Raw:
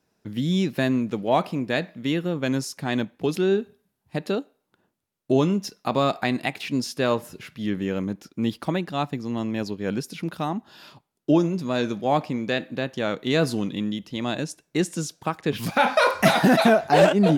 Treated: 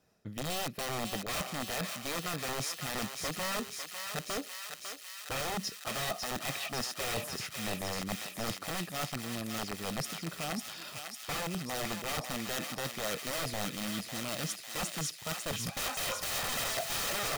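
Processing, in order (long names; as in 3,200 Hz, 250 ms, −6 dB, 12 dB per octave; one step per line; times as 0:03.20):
wrap-around overflow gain 19 dB
reversed playback
downward compressor 10 to 1, threshold −34 dBFS, peak gain reduction 12.5 dB
reversed playback
comb filter 1.6 ms, depth 36%
feedback echo with a high-pass in the loop 550 ms, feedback 80%, high-pass 1,200 Hz, level −4 dB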